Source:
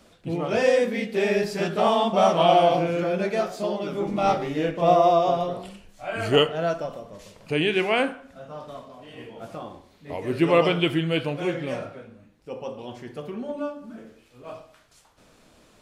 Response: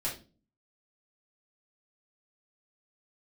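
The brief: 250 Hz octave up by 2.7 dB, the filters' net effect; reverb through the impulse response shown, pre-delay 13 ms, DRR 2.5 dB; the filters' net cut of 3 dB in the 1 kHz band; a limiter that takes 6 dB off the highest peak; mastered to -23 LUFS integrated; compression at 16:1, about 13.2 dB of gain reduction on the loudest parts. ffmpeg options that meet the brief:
-filter_complex "[0:a]equalizer=f=250:t=o:g=4.5,equalizer=f=1000:t=o:g=-5.5,acompressor=threshold=0.0447:ratio=16,alimiter=level_in=1.06:limit=0.0631:level=0:latency=1,volume=0.944,asplit=2[s0][s1];[1:a]atrim=start_sample=2205,adelay=13[s2];[s1][s2]afir=irnorm=-1:irlink=0,volume=0.473[s3];[s0][s3]amix=inputs=2:normalize=0,volume=2.99"

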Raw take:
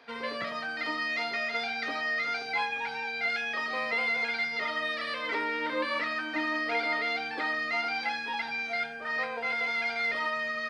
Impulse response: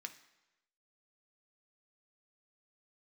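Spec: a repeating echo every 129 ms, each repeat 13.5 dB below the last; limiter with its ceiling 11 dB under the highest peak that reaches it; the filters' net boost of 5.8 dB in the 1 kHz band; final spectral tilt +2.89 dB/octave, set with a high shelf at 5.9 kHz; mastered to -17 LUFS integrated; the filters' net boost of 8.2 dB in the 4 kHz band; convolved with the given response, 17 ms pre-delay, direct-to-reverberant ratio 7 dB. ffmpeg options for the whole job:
-filter_complex "[0:a]equalizer=f=1000:t=o:g=7,equalizer=f=4000:t=o:g=7.5,highshelf=f=5900:g=6,alimiter=level_in=1.06:limit=0.0631:level=0:latency=1,volume=0.944,aecho=1:1:129|258:0.211|0.0444,asplit=2[s0][s1];[1:a]atrim=start_sample=2205,adelay=17[s2];[s1][s2]afir=irnorm=-1:irlink=0,volume=0.668[s3];[s0][s3]amix=inputs=2:normalize=0,volume=4.47"

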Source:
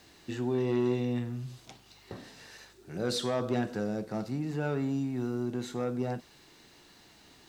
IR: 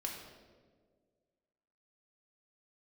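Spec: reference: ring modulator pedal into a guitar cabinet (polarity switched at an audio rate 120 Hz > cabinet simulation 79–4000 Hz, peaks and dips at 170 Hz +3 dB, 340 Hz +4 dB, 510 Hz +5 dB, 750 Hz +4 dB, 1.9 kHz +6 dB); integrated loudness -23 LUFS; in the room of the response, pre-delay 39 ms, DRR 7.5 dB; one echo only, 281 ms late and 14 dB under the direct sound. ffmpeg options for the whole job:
-filter_complex "[0:a]aecho=1:1:281:0.2,asplit=2[s0][s1];[1:a]atrim=start_sample=2205,adelay=39[s2];[s1][s2]afir=irnorm=-1:irlink=0,volume=0.398[s3];[s0][s3]amix=inputs=2:normalize=0,aeval=exprs='val(0)*sgn(sin(2*PI*120*n/s))':c=same,highpass=79,equalizer=f=170:t=q:w=4:g=3,equalizer=f=340:t=q:w=4:g=4,equalizer=f=510:t=q:w=4:g=5,equalizer=f=750:t=q:w=4:g=4,equalizer=f=1900:t=q:w=4:g=6,lowpass=f=4000:w=0.5412,lowpass=f=4000:w=1.3066,volume=2.11"

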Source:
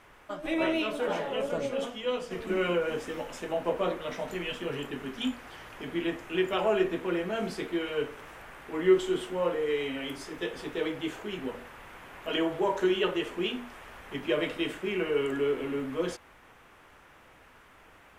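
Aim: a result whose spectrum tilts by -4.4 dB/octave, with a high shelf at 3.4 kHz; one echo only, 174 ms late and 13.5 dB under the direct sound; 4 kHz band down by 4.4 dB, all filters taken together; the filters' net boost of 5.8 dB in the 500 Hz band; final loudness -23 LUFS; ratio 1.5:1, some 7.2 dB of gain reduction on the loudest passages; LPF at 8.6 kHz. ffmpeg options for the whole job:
-af "lowpass=8600,equalizer=f=500:t=o:g=7.5,highshelf=f=3400:g=-3.5,equalizer=f=4000:t=o:g=-4.5,acompressor=threshold=0.0251:ratio=1.5,aecho=1:1:174:0.211,volume=2.37"

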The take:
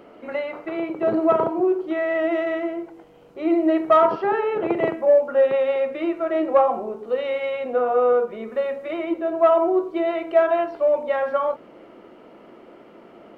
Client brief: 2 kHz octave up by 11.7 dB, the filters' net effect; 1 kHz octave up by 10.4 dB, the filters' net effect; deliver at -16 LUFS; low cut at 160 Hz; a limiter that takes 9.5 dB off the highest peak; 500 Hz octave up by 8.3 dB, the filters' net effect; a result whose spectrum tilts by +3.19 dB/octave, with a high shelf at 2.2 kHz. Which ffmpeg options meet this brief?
-af "highpass=160,equalizer=f=500:t=o:g=6.5,equalizer=f=1000:t=o:g=8.5,equalizer=f=2000:t=o:g=9,highshelf=f=2200:g=3.5,volume=0.944,alimiter=limit=0.501:level=0:latency=1"

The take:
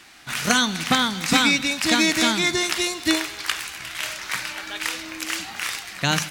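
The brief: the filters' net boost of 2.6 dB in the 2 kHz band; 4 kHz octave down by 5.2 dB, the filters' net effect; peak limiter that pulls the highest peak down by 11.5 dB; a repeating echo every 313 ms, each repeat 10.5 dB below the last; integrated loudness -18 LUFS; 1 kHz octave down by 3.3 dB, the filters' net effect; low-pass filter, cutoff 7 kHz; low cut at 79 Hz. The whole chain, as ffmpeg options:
-af "highpass=79,lowpass=7000,equalizer=f=1000:t=o:g=-7,equalizer=f=2000:t=o:g=7.5,equalizer=f=4000:t=o:g=-8.5,alimiter=limit=0.224:level=0:latency=1,aecho=1:1:313|626|939:0.299|0.0896|0.0269,volume=2.11"

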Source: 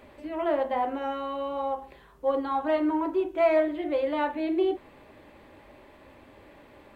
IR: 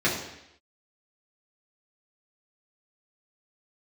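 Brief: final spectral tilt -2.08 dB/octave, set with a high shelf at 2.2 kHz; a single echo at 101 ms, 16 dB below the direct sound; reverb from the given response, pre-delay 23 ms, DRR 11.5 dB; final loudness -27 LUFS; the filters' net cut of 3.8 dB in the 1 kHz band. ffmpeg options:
-filter_complex "[0:a]equalizer=f=1000:t=o:g=-6.5,highshelf=f=2200:g=7.5,aecho=1:1:101:0.158,asplit=2[s0][s1];[1:a]atrim=start_sample=2205,adelay=23[s2];[s1][s2]afir=irnorm=-1:irlink=0,volume=0.0501[s3];[s0][s3]amix=inputs=2:normalize=0,volume=1.26"

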